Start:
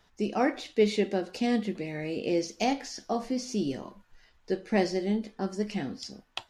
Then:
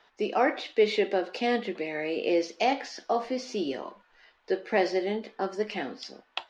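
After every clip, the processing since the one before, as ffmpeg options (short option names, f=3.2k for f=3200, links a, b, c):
-filter_complex "[0:a]acrossover=split=330 4500:gain=0.0794 1 0.0891[a][b][c];[a][b][c]amix=inputs=3:normalize=0,asplit=2[d][e];[e]alimiter=limit=-23dB:level=0:latency=1,volume=0.5dB[f];[d][f]amix=inputs=2:normalize=0"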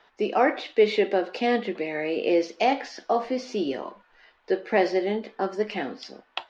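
-af "highshelf=f=5.2k:g=-8.5,volume=3.5dB"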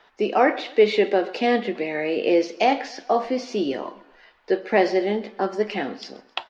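-af "aecho=1:1:132|264|396:0.0891|0.0428|0.0205,volume=3dB"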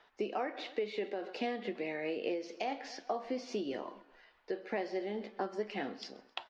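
-af "acompressor=threshold=-23dB:ratio=12,tremolo=f=4.8:d=0.31,volume=-8dB"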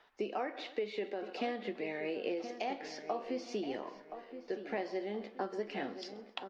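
-filter_complex "[0:a]asplit=2[a][b];[b]adelay=1023,lowpass=f=2k:p=1,volume=-10dB,asplit=2[c][d];[d]adelay=1023,lowpass=f=2k:p=1,volume=0.39,asplit=2[e][f];[f]adelay=1023,lowpass=f=2k:p=1,volume=0.39,asplit=2[g][h];[h]adelay=1023,lowpass=f=2k:p=1,volume=0.39[i];[a][c][e][g][i]amix=inputs=5:normalize=0,volume=-1dB"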